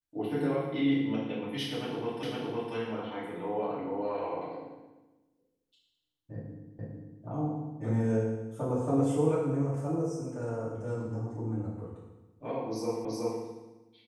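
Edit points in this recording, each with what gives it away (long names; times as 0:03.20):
0:02.23: the same again, the last 0.51 s
0:06.79: the same again, the last 0.45 s
0:13.05: the same again, the last 0.37 s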